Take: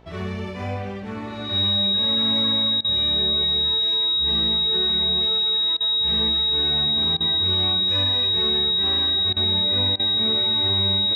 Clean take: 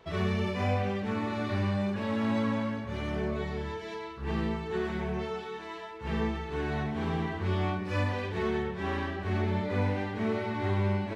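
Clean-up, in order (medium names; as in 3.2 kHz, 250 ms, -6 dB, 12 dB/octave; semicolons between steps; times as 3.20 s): de-hum 59.7 Hz, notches 15; band-stop 3.8 kHz, Q 30; interpolate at 2.81/5.77/7.17/9.33/9.96 s, 34 ms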